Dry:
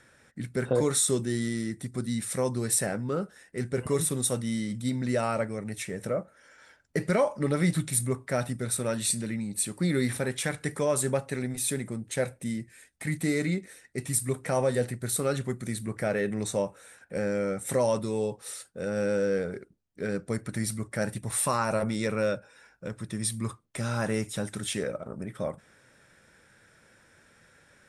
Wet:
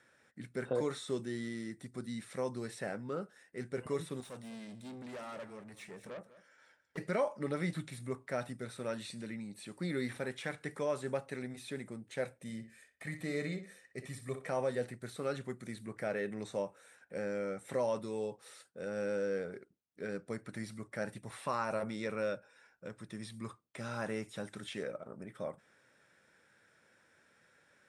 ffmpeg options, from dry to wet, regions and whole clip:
ffmpeg -i in.wav -filter_complex "[0:a]asettb=1/sr,asplit=3[link_01][link_02][link_03];[link_01]atrim=end=4.204[link_04];[link_02]atrim=start=4.2:end=6.98,asetpts=PTS-STARTPTS,afade=type=in:duration=0.004:curve=qsin,afade=type=out:start_time=2.776:duration=0.004:curve=qsin,aeval=exprs='(tanh(50.1*val(0)+0.5)-tanh(0.5))/50.1':channel_layout=same,aecho=1:1:200:0.15,atrim=end_sample=122598[link_05];[link_03]atrim=start=6.976[link_06];[link_04][link_05]acrossfade=duration=0.004:curve1=hsin:curve2=qsin[link_07];[link_07][link_06]acrossfade=duration=0.004:curve1=qsin:curve2=hsin,asettb=1/sr,asplit=3[link_08][link_09][link_10];[link_08]atrim=end=12.414[link_11];[link_09]atrim=start=12.41:end=14.49,asetpts=PTS-STARTPTS,afade=type=in:duration=0.004:curve=qsin,afade=type=out:start_time=2.076:duration=0.004:curve=qsin,aecho=1:1:1.7:0.36,atrim=end_sample=91728,asplit=2[link_12][link_13];[link_13]adelay=62,lowpass=frequency=3100:poles=1,volume=-9dB,asplit=2[link_14][link_15];[link_15]adelay=62,lowpass=frequency=3100:poles=1,volume=0.27,asplit=2[link_16][link_17];[link_17]adelay=62,lowpass=frequency=3100:poles=1,volume=0.27[link_18];[link_12][link_14][link_16][link_18]amix=inputs=4:normalize=0,atrim=end_sample=91728[link_19];[link_10]atrim=start=14.486[link_20];[link_11][link_19]acrossfade=duration=0.004:curve1=hsin:curve2=qsin[link_21];[link_21][link_20]acrossfade=duration=0.004:curve1=qsin:curve2=hsin,acrossover=split=4300[link_22][link_23];[link_23]acompressor=threshold=-44dB:ratio=4:attack=1:release=60[link_24];[link_22][link_24]amix=inputs=2:normalize=0,highpass=frequency=240:poles=1,highshelf=frequency=7500:gain=-7.5,volume=-7dB" out.wav

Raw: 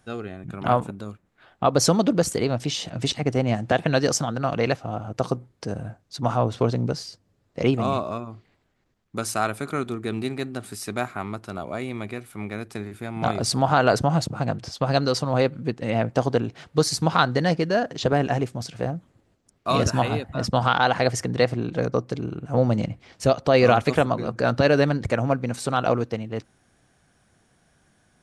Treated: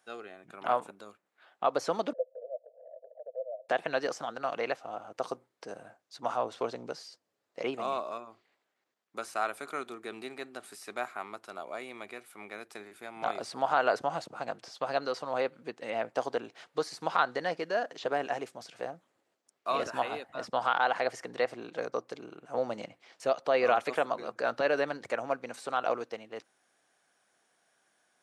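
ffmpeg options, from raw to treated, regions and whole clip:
ffmpeg -i in.wav -filter_complex "[0:a]asettb=1/sr,asplit=3[link_01][link_02][link_03];[link_01]atrim=end=2.134[link_04];[link_02]atrim=start=2.13:end=3.69,asetpts=PTS-STARTPTS,afade=type=in:duration=0.004:curve=qsin,afade=type=out:start_time=1.556:duration=0.004:curve=qsin,asuperpass=centerf=570:order=8:qfactor=3.3,acompressor=mode=upward:threshold=-34dB:ratio=2.5:attack=3.2:release=140:knee=2.83:detection=peak[link_05];[link_03]atrim=start=3.686[link_06];[link_04][link_05]acrossfade=duration=0.004:curve1=hsin:curve2=qsin[link_07];[link_07][link_06]acrossfade=duration=0.004:curve1=qsin:curve2=hsin,acrossover=split=2900[link_08][link_09];[link_09]acompressor=threshold=-40dB:ratio=4:attack=1:release=60[link_10];[link_08][link_10]amix=inputs=2:normalize=0,highpass=500,volume=-6dB" out.wav

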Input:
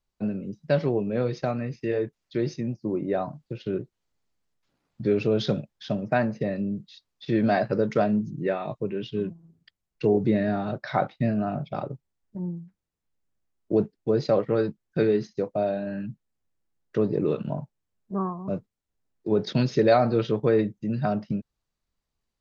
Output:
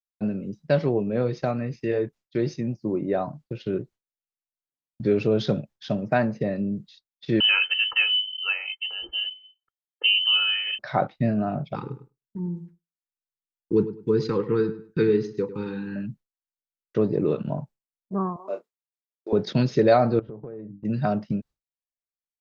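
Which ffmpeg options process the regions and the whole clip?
ffmpeg -i in.wav -filter_complex "[0:a]asettb=1/sr,asplit=3[link_01][link_02][link_03];[link_01]atrim=end=7.404[link_04];[link_02]atrim=start=7.4:end=10.79,asetpts=PTS-STARTPTS,afade=type=in:duration=0.004:curve=qsin,afade=type=out:start_time=3.386:duration=0.004:curve=qsin,lowpass=frequency=2700:width_type=q:width=0.5098,lowpass=frequency=2700:width_type=q:width=0.6013,lowpass=frequency=2700:width_type=q:width=0.9,lowpass=frequency=2700:width_type=q:width=2.563,afreqshift=-3200,aecho=1:1:2.3:0.56,atrim=end_sample=149499[link_05];[link_03]atrim=start=10.786[link_06];[link_04][link_05]acrossfade=duration=0.004:curve1=hsin:curve2=qsin[link_07];[link_07][link_06]acrossfade=duration=0.004:curve1=qsin:curve2=hsin,asettb=1/sr,asplit=3[link_08][link_09][link_10];[link_08]atrim=end=11.754[link_11];[link_09]atrim=start=11.75:end=15.96,asetpts=PTS-STARTPTS,afade=type=in:duration=0.004:curve=qsin,afade=type=out:start_time=4.206:duration=0.004:curve=qsin,asuperstop=centerf=650:order=12:qfactor=2,asplit=2[link_12][link_13];[link_13]adelay=102,lowpass=frequency=2800:poles=1,volume=-13dB,asplit=2[link_14][link_15];[link_15]adelay=102,lowpass=frequency=2800:poles=1,volume=0.26,asplit=2[link_16][link_17];[link_17]adelay=102,lowpass=frequency=2800:poles=1,volume=0.26[link_18];[link_12][link_14][link_16][link_18]amix=inputs=4:normalize=0,atrim=end_sample=185661[link_19];[link_10]atrim=start=15.956[link_20];[link_11][link_19]acrossfade=duration=0.004:curve1=hsin:curve2=qsin[link_21];[link_21][link_20]acrossfade=duration=0.004:curve1=qsin:curve2=hsin,asettb=1/sr,asplit=3[link_22][link_23][link_24];[link_22]atrim=end=18.364[link_25];[link_23]atrim=start=18.36:end=19.33,asetpts=PTS-STARTPTS,afade=type=in:duration=0.004:curve=qsin,afade=type=out:start_time=0.966:duration=0.004:curve=qsin,highpass=frequency=410:width=0.5412,highpass=frequency=410:width=1.3066,asplit=2[link_26][link_27];[link_27]adelay=29,volume=-8.5dB[link_28];[link_26][link_28]amix=inputs=2:normalize=0,atrim=end_sample=42777[link_29];[link_24]atrim=start=19.326[link_30];[link_25][link_29]acrossfade=duration=0.004:curve1=hsin:curve2=qsin[link_31];[link_31][link_30]acrossfade=duration=0.004:curve1=qsin:curve2=hsin,asettb=1/sr,asplit=3[link_32][link_33][link_34];[link_32]atrim=end=20.194[link_35];[link_33]atrim=start=20.19:end=20.85,asetpts=PTS-STARTPTS,afade=type=in:duration=0.004:curve=qsin,afade=type=out:start_time=0.656:duration=0.004:curve=qsin,lowpass=1000,bandreject=frequency=50:width_type=h:width=6,bandreject=frequency=100:width_type=h:width=6,bandreject=frequency=150:width_type=h:width=6,bandreject=frequency=200:width_type=h:width=6,bandreject=frequency=250:width_type=h:width=6,bandreject=frequency=300:width_type=h:width=6,acompressor=threshold=-35dB:ratio=12:attack=3.2:release=140:knee=1:detection=peak[link_36];[link_34]atrim=start=20.846[link_37];[link_35][link_36]acrossfade=duration=0.004:curve1=hsin:curve2=qsin[link_38];[link_38][link_37]acrossfade=duration=0.004:curve1=qsin:curve2=hsin,agate=range=-33dB:threshold=-42dB:ratio=3:detection=peak,adynamicequalizer=threshold=0.0112:dfrequency=1600:dqfactor=0.7:tfrequency=1600:tqfactor=0.7:attack=5:release=100:ratio=0.375:range=2.5:mode=cutabove:tftype=highshelf,volume=1.5dB" out.wav

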